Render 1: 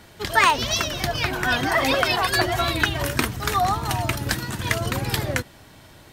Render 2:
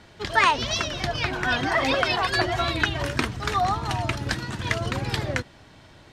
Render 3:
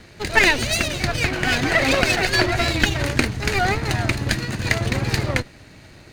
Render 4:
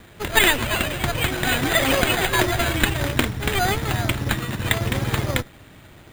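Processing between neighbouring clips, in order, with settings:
low-pass filter 5,900 Hz 12 dB per octave; level −2 dB
lower of the sound and its delayed copy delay 0.45 ms; level +6 dB
decimation without filtering 8×; notch filter 8,000 Hz, Q 11; level −1 dB

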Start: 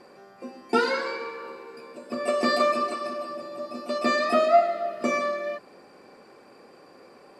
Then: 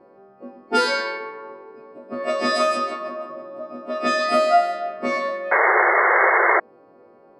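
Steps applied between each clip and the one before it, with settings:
every partial snapped to a pitch grid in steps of 2 semitones
low-pass that shuts in the quiet parts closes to 730 Hz, open at −17.5 dBFS
sound drawn into the spectrogram noise, 0:05.51–0:06.60, 340–2,200 Hz −19 dBFS
level +2.5 dB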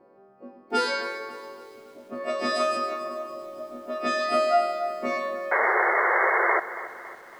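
feedback echo at a low word length 278 ms, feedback 55%, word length 7 bits, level −14 dB
level −5.5 dB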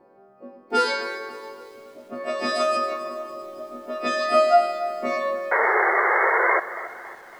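flanger 0.42 Hz, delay 1.1 ms, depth 1.5 ms, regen +72%
level +6.5 dB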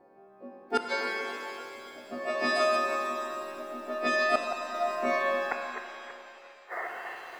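hollow resonant body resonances 730/1,800/3,400 Hz, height 9 dB, ringing for 55 ms
gate with flip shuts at −9 dBFS, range −41 dB
reverb with rising layers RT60 2.6 s, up +7 semitones, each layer −8 dB, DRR 5 dB
level −4.5 dB

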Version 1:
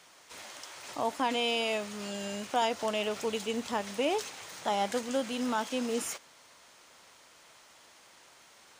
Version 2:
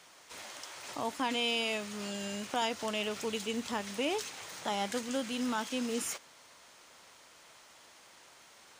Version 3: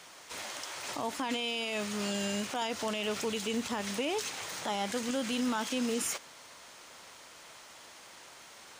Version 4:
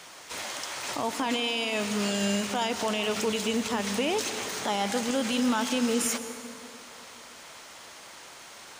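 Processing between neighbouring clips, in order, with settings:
dynamic equaliser 650 Hz, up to −6 dB, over −42 dBFS, Q 0.96
brickwall limiter −29 dBFS, peak gain reduction 9 dB; level +5.5 dB
dense smooth reverb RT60 2.8 s, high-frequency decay 0.55×, pre-delay 105 ms, DRR 10 dB; level +5 dB

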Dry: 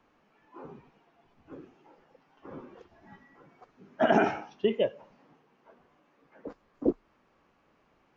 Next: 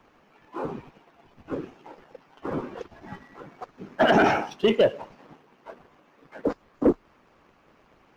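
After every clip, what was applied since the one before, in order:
harmonic and percussive parts rebalanced percussive +8 dB
brickwall limiter −16 dBFS, peak gain reduction 11 dB
leveller curve on the samples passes 1
level +5 dB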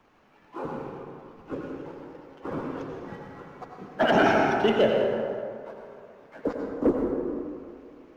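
dense smooth reverb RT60 2.3 s, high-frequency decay 0.45×, pre-delay 75 ms, DRR 0.5 dB
level −3 dB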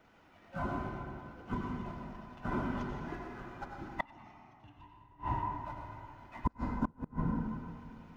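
frequency inversion band by band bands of 500 Hz
hum removal 65.19 Hz, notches 36
gate with flip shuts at −18 dBFS, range −33 dB
level −1.5 dB

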